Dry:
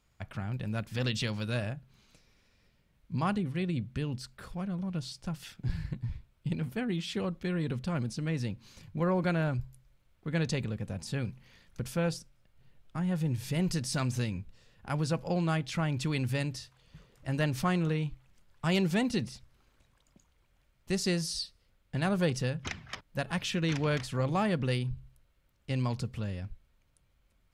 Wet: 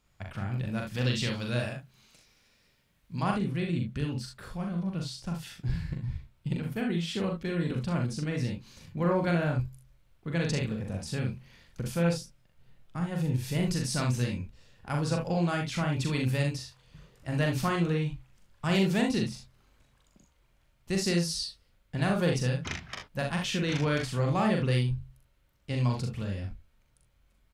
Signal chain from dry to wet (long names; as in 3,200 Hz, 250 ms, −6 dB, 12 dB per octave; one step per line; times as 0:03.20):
0:01.59–0:03.23: spectral tilt +1.5 dB per octave
on a send: ambience of single reflections 41 ms −3.5 dB, 64 ms −7.5 dB, 78 ms −12 dB